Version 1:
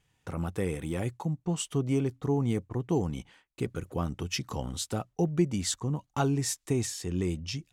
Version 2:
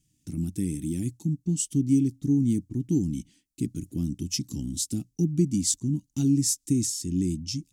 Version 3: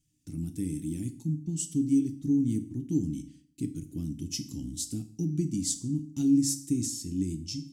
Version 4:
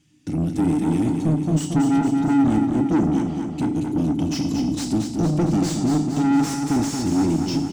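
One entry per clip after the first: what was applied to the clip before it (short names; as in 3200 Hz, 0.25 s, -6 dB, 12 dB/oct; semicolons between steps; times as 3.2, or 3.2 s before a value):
EQ curve 100 Hz 0 dB, 300 Hz +9 dB, 490 Hz -23 dB, 730 Hz -24 dB, 1200 Hz -29 dB, 2100 Hz -12 dB, 3800 Hz -3 dB, 5400 Hz +6 dB, 9100 Hz +8 dB, 13000 Hz +6 dB
FDN reverb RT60 0.49 s, low-frequency decay 1.25×, high-frequency decay 1×, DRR 8 dB; gain -5.5 dB
high shelf 6600 Hz -9.5 dB; overdrive pedal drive 34 dB, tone 1300 Hz, clips at -11.5 dBFS; on a send: feedback echo 0.229 s, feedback 60%, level -6 dB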